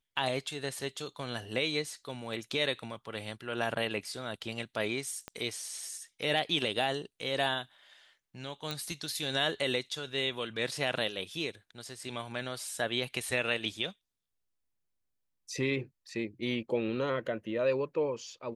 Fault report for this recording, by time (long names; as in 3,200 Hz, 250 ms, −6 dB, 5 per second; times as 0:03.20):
0:05.28: click −24 dBFS
0:08.71: click